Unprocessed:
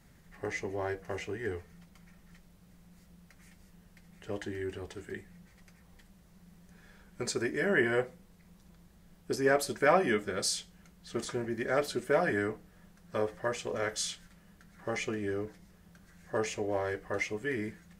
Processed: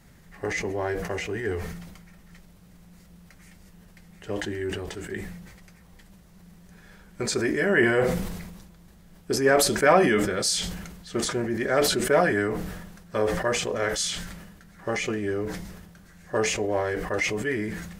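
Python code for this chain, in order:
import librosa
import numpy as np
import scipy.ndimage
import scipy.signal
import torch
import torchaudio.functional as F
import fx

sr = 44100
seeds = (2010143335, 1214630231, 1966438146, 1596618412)

y = fx.sustainer(x, sr, db_per_s=43.0)
y = y * 10.0 ** (6.0 / 20.0)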